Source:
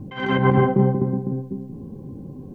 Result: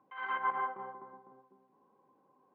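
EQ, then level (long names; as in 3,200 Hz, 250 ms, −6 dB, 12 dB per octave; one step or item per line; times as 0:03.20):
four-pole ladder band-pass 1,300 Hz, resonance 50%
high-frequency loss of the air 55 metres
0.0 dB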